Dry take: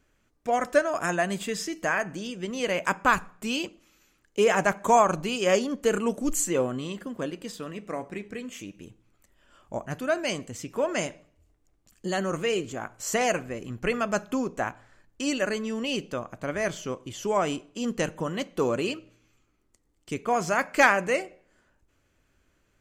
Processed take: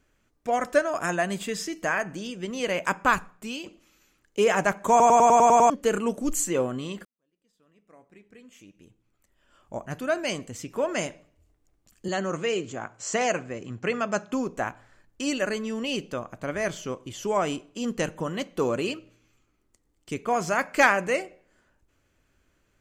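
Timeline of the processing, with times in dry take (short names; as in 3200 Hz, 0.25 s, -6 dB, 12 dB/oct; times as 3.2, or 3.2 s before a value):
3.12–3.66 fade out, to -8.5 dB
4.9 stutter in place 0.10 s, 8 plays
7.05–10.04 fade in quadratic
12.08–14.33 elliptic band-pass 100–7400 Hz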